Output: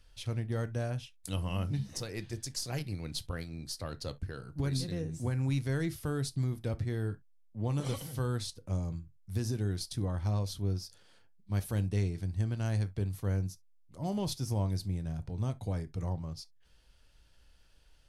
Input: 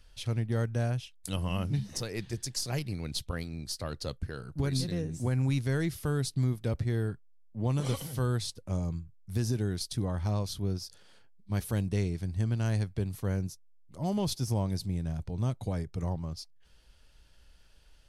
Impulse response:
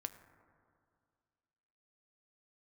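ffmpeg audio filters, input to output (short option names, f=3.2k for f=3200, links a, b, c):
-filter_complex "[1:a]atrim=start_sample=2205,atrim=end_sample=3087,asetrate=43659,aresample=44100[a];[0:a][a]afir=irnorm=-1:irlink=0"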